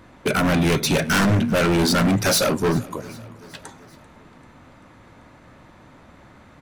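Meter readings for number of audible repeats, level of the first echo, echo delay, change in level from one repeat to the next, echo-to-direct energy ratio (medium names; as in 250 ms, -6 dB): 3, -22.0 dB, 390 ms, -4.5 dB, -20.5 dB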